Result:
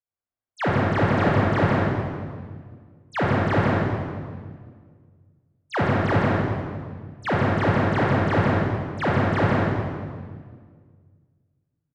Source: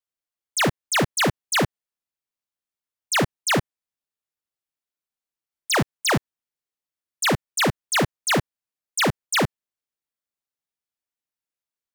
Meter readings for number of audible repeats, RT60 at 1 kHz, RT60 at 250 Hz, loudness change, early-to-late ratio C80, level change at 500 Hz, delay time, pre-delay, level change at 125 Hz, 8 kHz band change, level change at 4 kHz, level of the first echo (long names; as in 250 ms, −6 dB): 1, 1.6 s, 2.3 s, 0.0 dB, −2.5 dB, +4.5 dB, 160 ms, 24 ms, +8.0 dB, below −25 dB, −12.5 dB, −3.5 dB